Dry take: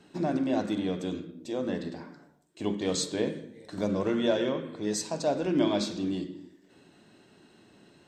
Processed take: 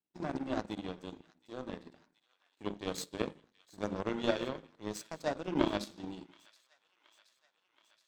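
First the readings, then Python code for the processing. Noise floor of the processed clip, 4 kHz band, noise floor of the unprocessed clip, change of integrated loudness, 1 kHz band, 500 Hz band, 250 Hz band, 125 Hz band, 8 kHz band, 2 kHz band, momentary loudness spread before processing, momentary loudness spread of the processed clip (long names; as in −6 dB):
−79 dBFS, −7.5 dB, −60 dBFS, −8.0 dB, −4.0 dB, −8.0 dB, −9.0 dB, −8.5 dB, −11.5 dB, −3.5 dB, 14 LU, 15 LU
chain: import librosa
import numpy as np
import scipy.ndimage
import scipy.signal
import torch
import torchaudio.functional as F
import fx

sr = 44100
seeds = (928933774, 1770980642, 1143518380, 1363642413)

y = fx.power_curve(x, sr, exponent=2.0)
y = fx.echo_wet_highpass(y, sr, ms=724, feedback_pct=69, hz=1700.0, wet_db=-21.0)
y = y * librosa.db_to_amplitude(1.5)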